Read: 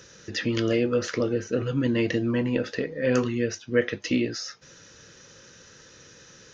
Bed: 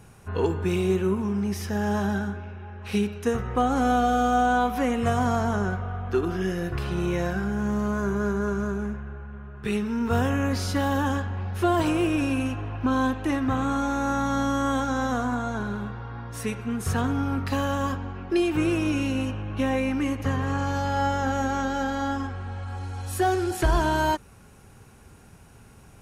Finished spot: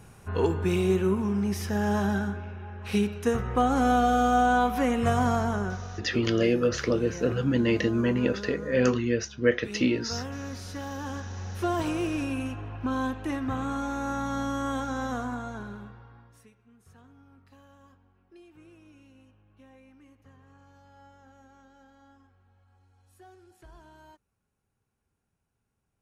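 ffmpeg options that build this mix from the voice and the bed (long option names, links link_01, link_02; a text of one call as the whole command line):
ffmpeg -i stem1.wav -i stem2.wav -filter_complex "[0:a]adelay=5700,volume=0dB[link_01];[1:a]volume=6dB,afade=type=out:start_time=5.26:duration=0.85:silence=0.266073,afade=type=in:start_time=10.98:duration=0.5:silence=0.473151,afade=type=out:start_time=15.15:duration=1.35:silence=0.0595662[link_02];[link_01][link_02]amix=inputs=2:normalize=0" out.wav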